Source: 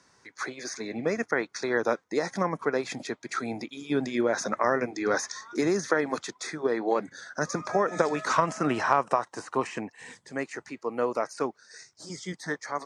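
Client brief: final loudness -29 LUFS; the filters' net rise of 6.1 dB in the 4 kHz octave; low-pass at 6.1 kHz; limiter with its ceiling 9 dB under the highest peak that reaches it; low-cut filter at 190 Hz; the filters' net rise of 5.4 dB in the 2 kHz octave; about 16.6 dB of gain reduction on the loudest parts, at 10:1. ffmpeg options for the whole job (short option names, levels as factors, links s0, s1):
-af "highpass=190,lowpass=6100,equalizer=f=2000:t=o:g=5.5,equalizer=f=4000:t=o:g=7.5,acompressor=threshold=0.02:ratio=10,volume=3.55,alimiter=limit=0.141:level=0:latency=1"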